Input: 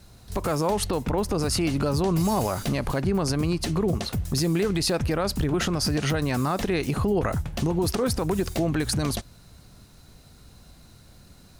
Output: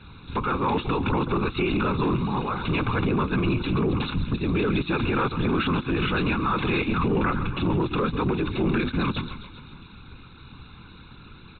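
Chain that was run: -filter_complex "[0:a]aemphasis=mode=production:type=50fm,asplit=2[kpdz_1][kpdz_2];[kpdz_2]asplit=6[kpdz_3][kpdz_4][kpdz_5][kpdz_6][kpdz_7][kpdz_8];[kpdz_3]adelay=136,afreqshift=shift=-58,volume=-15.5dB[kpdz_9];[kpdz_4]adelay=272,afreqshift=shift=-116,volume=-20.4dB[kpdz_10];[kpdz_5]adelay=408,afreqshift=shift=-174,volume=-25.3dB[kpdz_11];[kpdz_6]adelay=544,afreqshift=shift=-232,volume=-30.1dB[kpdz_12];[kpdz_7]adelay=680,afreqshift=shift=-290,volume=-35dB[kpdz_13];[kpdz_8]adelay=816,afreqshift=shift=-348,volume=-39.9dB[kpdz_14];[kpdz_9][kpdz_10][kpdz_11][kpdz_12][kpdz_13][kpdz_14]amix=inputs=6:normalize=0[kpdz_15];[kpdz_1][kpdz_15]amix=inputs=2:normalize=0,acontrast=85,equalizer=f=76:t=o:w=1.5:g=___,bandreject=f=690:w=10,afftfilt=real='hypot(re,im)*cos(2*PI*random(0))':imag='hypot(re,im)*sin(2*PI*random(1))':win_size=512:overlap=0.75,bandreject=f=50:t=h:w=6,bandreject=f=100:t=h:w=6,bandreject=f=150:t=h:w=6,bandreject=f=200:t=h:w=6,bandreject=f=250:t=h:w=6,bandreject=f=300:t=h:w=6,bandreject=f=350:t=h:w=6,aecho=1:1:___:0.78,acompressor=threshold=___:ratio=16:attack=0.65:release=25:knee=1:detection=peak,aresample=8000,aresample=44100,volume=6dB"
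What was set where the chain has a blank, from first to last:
-12, 0.8, -24dB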